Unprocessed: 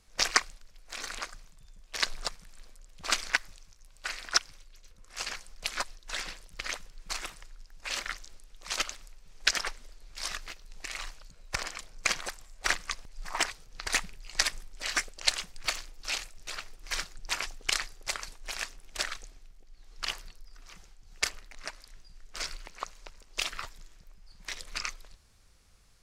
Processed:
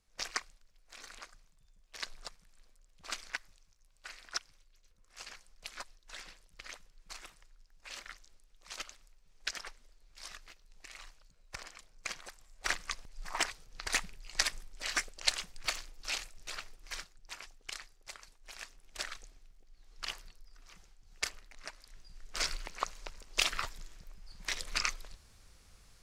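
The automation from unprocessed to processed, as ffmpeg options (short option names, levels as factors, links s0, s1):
-af "volume=4.73,afade=t=in:st=12.29:d=0.58:silence=0.375837,afade=t=out:st=16.62:d=0.51:silence=0.281838,afade=t=in:st=18.38:d=0.79:silence=0.375837,afade=t=in:st=21.78:d=0.66:silence=0.375837"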